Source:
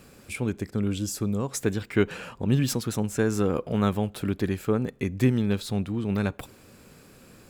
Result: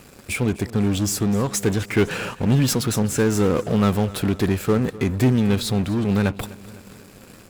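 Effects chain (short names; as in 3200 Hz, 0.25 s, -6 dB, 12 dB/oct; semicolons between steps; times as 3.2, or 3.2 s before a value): sample leveller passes 2; in parallel at -5 dB: wavefolder -27 dBFS; on the sum: feedback echo 0.252 s, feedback 55%, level -19 dB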